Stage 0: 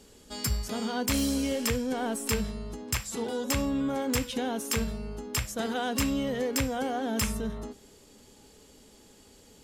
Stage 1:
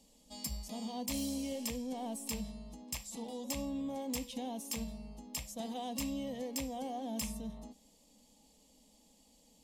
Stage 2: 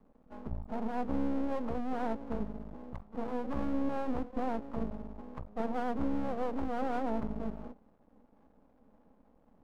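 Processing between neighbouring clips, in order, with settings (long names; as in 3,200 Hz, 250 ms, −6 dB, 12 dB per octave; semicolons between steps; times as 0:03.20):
phaser with its sweep stopped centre 390 Hz, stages 6; level −8 dB
Chebyshev low-pass filter 1,300 Hz, order 8; dynamic equaliser 400 Hz, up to +6 dB, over −53 dBFS, Q 1.2; half-wave rectification; level +8 dB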